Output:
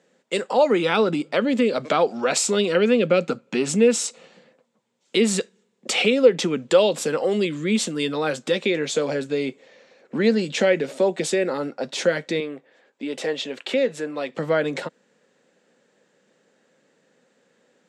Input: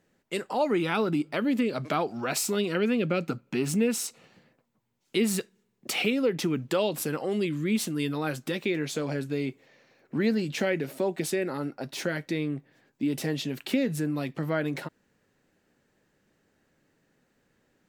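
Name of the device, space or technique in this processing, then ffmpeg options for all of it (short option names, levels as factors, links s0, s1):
television speaker: -filter_complex "[0:a]asettb=1/sr,asplit=3[s0][s1][s2];[s0]atrim=end=12.404[s3];[s1]atrim=start=12.4:end=14.33,asetpts=PTS-STARTPTS,afade=t=in:d=0.004:c=qsin,afade=t=out:st=1.926:d=0.004:c=qsin,bass=f=250:g=-15,treble=f=4000:g=-7[s4];[s2]atrim=start=14.326[s5];[s3][s4]acrossfade=d=0.004:c1=hsin:c2=qsin[s6];[s6][s5]acrossfade=d=0.004:c1=qsin:c2=hsin,highpass=f=180:w=0.5412,highpass=f=180:w=1.3066,equalizer=f=310:t=q:w=4:g=-5,equalizer=f=510:t=q:w=4:g=8,equalizer=f=3500:t=q:w=4:g=4,equalizer=f=7400:t=q:w=4:g=5,lowpass=f=8400:w=0.5412,lowpass=f=8400:w=1.3066,volume=2"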